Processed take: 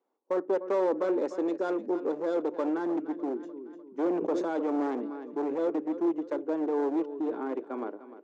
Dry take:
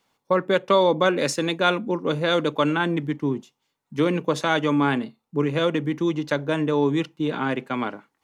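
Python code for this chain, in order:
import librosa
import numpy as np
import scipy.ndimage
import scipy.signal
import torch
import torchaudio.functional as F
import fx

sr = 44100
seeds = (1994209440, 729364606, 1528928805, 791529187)

y = fx.self_delay(x, sr, depth_ms=0.096)
y = fx.tilt_eq(y, sr, slope=-4.5)
y = fx.echo_feedback(y, sr, ms=300, feedback_pct=38, wet_db=-14.5)
y = np.clip(10.0 ** (12.5 / 20.0) * y, -1.0, 1.0) / 10.0 ** (12.5 / 20.0)
y = scipy.signal.sosfilt(scipy.signal.ellip(3, 1.0, 40, [340.0, 7100.0], 'bandpass', fs=sr, output='sos'), y)
y = fx.peak_eq(y, sr, hz=3000.0, db=-12.5, octaves=2.4)
y = fx.sustainer(y, sr, db_per_s=32.0, at=(3.37, 5.65))
y = y * librosa.db_to_amplitude(-6.5)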